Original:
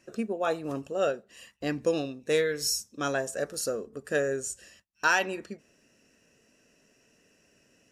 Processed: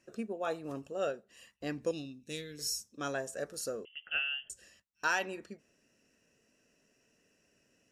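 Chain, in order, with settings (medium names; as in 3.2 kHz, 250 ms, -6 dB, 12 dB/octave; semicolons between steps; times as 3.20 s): 1.91–2.59 s: high-order bell 890 Hz -14.5 dB 2.6 oct; 3.85–4.50 s: frequency inversion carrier 3.2 kHz; trim -7 dB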